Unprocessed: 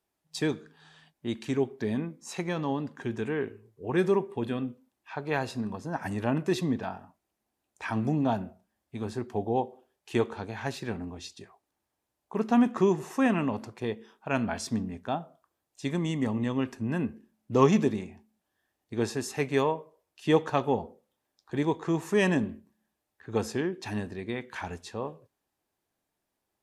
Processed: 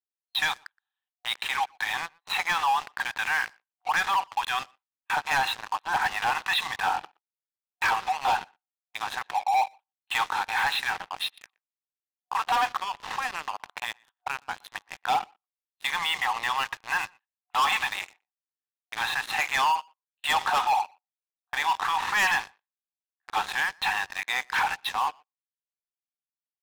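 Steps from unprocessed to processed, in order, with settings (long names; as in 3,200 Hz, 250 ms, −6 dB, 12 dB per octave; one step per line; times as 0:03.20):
noise gate −48 dBFS, range −24 dB
brick-wall band-pass 730–4,200 Hz
0:12.76–0:14.75: downward compressor 12 to 1, threshold −46 dBFS, peak gain reduction 19.5 dB
leveller curve on the samples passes 5
brickwall limiter −20.5 dBFS, peak gain reduction 6 dB
far-end echo of a speakerphone 120 ms, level −26 dB
level +1.5 dB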